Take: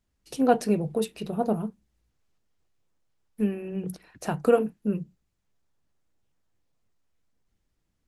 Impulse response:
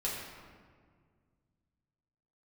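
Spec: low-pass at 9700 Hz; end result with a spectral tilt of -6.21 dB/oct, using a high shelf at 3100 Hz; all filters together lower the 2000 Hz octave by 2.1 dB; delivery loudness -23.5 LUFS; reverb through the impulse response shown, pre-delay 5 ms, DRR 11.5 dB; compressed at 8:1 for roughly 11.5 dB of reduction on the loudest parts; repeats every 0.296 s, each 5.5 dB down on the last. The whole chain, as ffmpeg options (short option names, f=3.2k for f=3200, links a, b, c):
-filter_complex "[0:a]lowpass=9.7k,equalizer=f=2k:t=o:g=-5.5,highshelf=f=3.1k:g=5.5,acompressor=threshold=-26dB:ratio=8,aecho=1:1:296|592|888|1184|1480|1776|2072:0.531|0.281|0.149|0.079|0.0419|0.0222|0.0118,asplit=2[a][b];[1:a]atrim=start_sample=2205,adelay=5[c];[b][c]afir=irnorm=-1:irlink=0,volume=-16dB[d];[a][d]amix=inputs=2:normalize=0,volume=9.5dB"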